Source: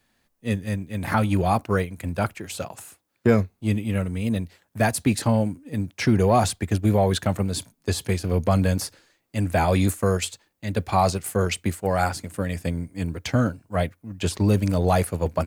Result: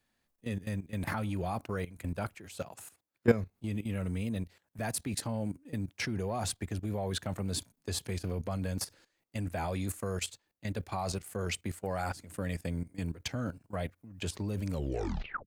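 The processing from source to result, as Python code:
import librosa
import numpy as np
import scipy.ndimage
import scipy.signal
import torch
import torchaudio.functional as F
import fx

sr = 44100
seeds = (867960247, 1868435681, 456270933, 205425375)

y = fx.tape_stop_end(x, sr, length_s=0.78)
y = fx.level_steps(y, sr, step_db=15)
y = y * librosa.db_to_amplitude(-3.5)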